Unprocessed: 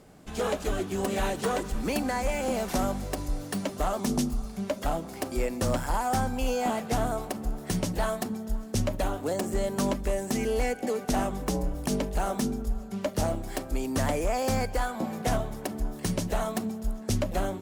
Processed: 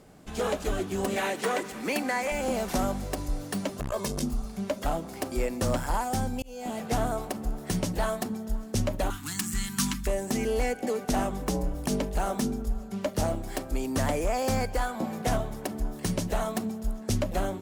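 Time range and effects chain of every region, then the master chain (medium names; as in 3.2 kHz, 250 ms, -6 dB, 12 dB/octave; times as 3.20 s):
1.16–2.32 s: high-pass 230 Hz + peaking EQ 2.1 kHz +7 dB 0.65 oct
3.79–4.23 s: comb 1.9 ms, depth 81% + hard clipper -21 dBFS + transformer saturation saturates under 170 Hz
6.04–6.80 s: peaking EQ 1.2 kHz -8 dB 1.5 oct + slow attack 413 ms
9.10–10.07 s: Chebyshev band-stop 210–1300 Hz + treble shelf 2.1 kHz +9.5 dB
whole clip: none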